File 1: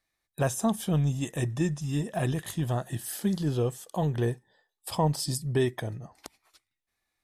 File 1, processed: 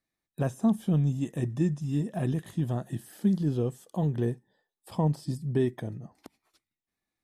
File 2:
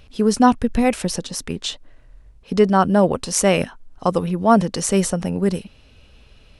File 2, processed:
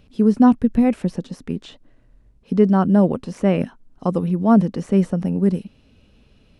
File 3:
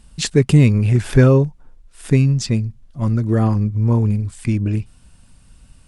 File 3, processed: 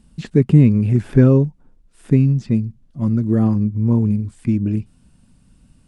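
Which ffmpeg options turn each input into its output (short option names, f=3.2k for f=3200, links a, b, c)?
-filter_complex "[0:a]equalizer=f=220:w=0.68:g=11.5,acrossover=split=2800[a][b];[b]acompressor=threshold=-40dB:ratio=4:attack=1:release=60[c];[a][c]amix=inputs=2:normalize=0,volume=-8dB"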